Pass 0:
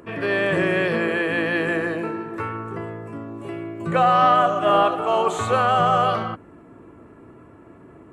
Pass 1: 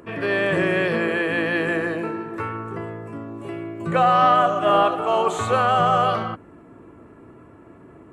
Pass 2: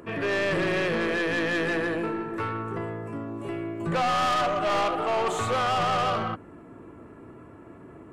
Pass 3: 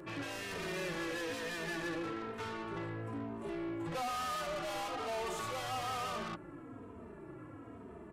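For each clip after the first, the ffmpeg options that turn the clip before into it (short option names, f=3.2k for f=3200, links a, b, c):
-af anull
-af "aeval=exprs='(tanh(12.6*val(0)+0.15)-tanh(0.15))/12.6':c=same"
-filter_complex "[0:a]asoftclip=type=tanh:threshold=-35dB,aresample=32000,aresample=44100,asplit=2[a][b];[b]adelay=3,afreqshift=-1.1[c];[a][c]amix=inputs=2:normalize=1"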